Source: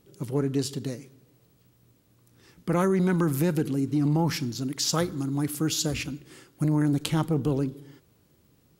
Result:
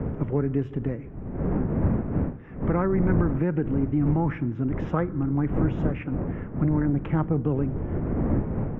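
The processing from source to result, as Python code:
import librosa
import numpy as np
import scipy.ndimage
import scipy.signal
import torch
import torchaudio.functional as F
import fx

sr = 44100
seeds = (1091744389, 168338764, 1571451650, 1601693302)

y = fx.dmg_wind(x, sr, seeds[0], corner_hz=200.0, level_db=-29.0)
y = scipy.signal.sosfilt(scipy.signal.cheby2(4, 40, 4100.0, 'lowpass', fs=sr, output='sos'), y)
y = fx.band_squash(y, sr, depth_pct=70)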